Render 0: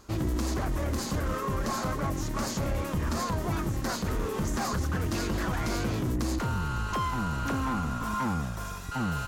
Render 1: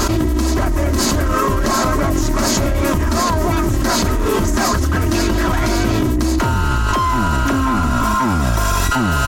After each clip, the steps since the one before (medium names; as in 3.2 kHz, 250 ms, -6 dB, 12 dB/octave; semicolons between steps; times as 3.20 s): comb 3.1 ms, depth 54%; level flattener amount 100%; trim +8 dB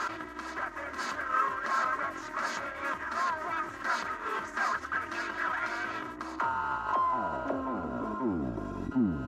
band-pass sweep 1.5 kHz -> 260 Hz, 5.97–8.88 s; trim -5.5 dB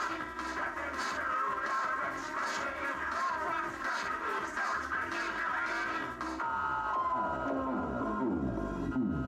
early reflections 15 ms -5.5 dB, 58 ms -7 dB; peak limiter -25 dBFS, peak gain reduction 9.5 dB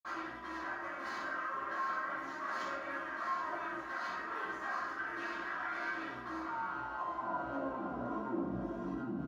median filter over 3 samples; delay 760 ms -14 dB; reverberation RT60 0.55 s, pre-delay 46 ms; trim -4.5 dB